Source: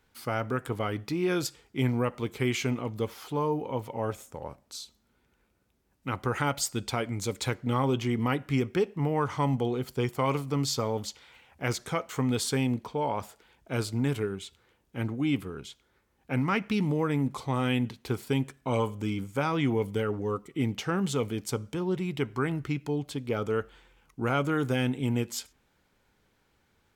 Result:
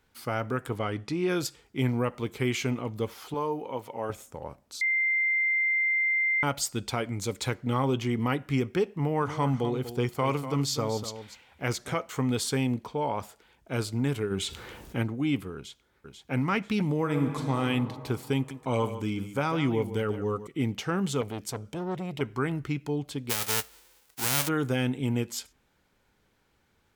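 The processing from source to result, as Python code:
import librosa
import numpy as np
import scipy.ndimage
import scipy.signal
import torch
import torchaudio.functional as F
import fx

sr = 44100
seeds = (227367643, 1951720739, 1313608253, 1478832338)

y = fx.lowpass(x, sr, hz=10000.0, slope=24, at=(0.78, 1.29))
y = fx.highpass(y, sr, hz=340.0, slope=6, at=(3.34, 4.1))
y = fx.echo_single(y, sr, ms=244, db=-11.5, at=(9.16, 11.94), fade=0.02)
y = fx.env_flatten(y, sr, amount_pct=50, at=(14.3, 15.02), fade=0.02)
y = fx.echo_throw(y, sr, start_s=15.55, length_s=0.77, ms=490, feedback_pct=30, wet_db=-5.5)
y = fx.reverb_throw(y, sr, start_s=16.97, length_s=0.61, rt60_s=2.6, drr_db=4.0)
y = fx.echo_single(y, sr, ms=147, db=-12.0, at=(18.36, 20.47))
y = fx.transformer_sat(y, sr, knee_hz=1100.0, at=(21.21, 22.21))
y = fx.envelope_flatten(y, sr, power=0.1, at=(23.29, 24.47), fade=0.02)
y = fx.edit(y, sr, fx.bleep(start_s=4.81, length_s=1.62, hz=2090.0, db=-22.5), tone=tone)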